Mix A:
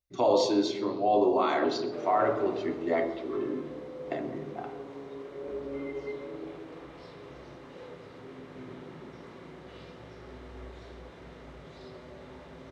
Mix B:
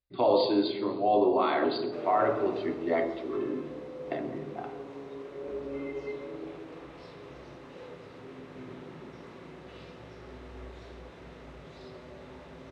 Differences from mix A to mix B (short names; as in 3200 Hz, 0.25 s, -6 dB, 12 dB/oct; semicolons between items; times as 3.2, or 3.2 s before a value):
speech: add brick-wall FIR low-pass 4900 Hz; background: remove notch 2600 Hz, Q 20